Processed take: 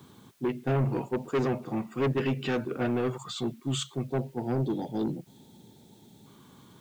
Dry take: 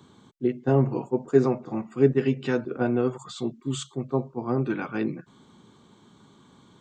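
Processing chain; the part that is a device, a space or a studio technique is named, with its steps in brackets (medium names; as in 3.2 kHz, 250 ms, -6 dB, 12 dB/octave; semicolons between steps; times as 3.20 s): spectral selection erased 4.08–6.26 s, 940–3200 Hz; open-reel tape (saturation -23 dBFS, distortion -7 dB; peaking EQ 120 Hz +3 dB; white noise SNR 35 dB); dynamic bell 2.7 kHz, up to +5 dB, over -53 dBFS, Q 1.1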